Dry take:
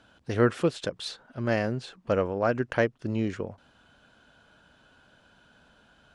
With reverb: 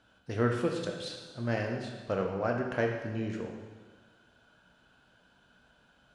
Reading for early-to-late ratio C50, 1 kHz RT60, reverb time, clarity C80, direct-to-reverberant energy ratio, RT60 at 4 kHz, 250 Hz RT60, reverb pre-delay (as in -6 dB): 3.5 dB, 1.4 s, 1.4 s, 6.0 dB, 1.0 dB, 1.3 s, 1.4 s, 6 ms